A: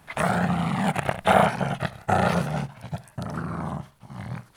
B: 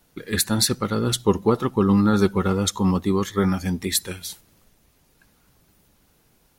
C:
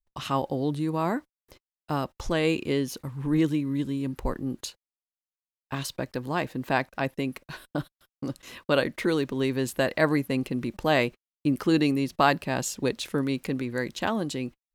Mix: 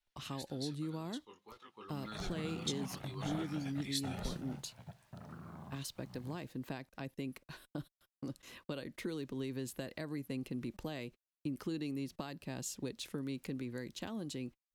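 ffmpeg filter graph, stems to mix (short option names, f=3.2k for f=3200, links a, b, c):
-filter_complex "[0:a]highshelf=f=8.7k:g=-11.5,acompressor=mode=upward:threshold=-29dB:ratio=2.5,acrusher=bits=8:mix=0:aa=0.000001,adelay=1950,volume=-19dB[a];[1:a]bandpass=f=2.9k:t=q:w=1.1:csg=0,flanger=delay=18:depth=5:speed=1.9,volume=-5.5dB,afade=t=in:st=1.63:d=0.53:silence=0.281838[b];[2:a]acompressor=threshold=-25dB:ratio=6,volume=-9dB[c];[a][b][c]amix=inputs=3:normalize=0,acrossover=split=400|3000[d][e][f];[e]acompressor=threshold=-54dB:ratio=2[g];[d][g][f]amix=inputs=3:normalize=0"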